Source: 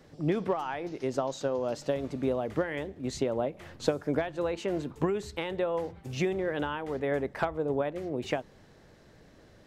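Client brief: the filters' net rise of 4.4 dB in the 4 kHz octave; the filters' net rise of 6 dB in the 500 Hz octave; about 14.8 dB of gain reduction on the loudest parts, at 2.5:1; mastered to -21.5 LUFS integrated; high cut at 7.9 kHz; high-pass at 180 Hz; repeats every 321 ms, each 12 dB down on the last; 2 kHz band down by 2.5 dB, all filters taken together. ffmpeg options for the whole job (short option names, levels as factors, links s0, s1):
-af "highpass=180,lowpass=7900,equalizer=f=500:t=o:g=7.5,equalizer=f=2000:t=o:g=-5.5,equalizer=f=4000:t=o:g=7.5,acompressor=threshold=0.01:ratio=2.5,aecho=1:1:321|642|963:0.251|0.0628|0.0157,volume=7.08"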